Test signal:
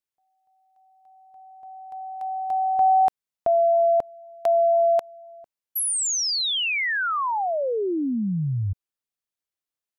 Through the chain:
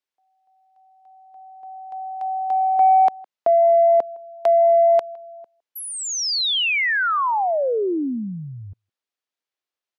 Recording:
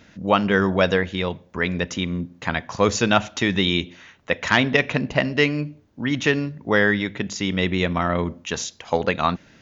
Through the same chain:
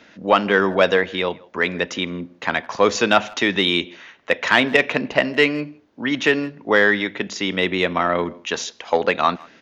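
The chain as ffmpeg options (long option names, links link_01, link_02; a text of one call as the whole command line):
ffmpeg -i in.wav -filter_complex "[0:a]acrossover=split=240 5800:gain=0.141 1 0.224[link_01][link_02][link_03];[link_01][link_02][link_03]amix=inputs=3:normalize=0,asplit=2[link_04][link_05];[link_05]adelay=160,highpass=300,lowpass=3400,asoftclip=type=hard:threshold=-11.5dB,volume=-25dB[link_06];[link_04][link_06]amix=inputs=2:normalize=0,acontrast=33,volume=-1dB" out.wav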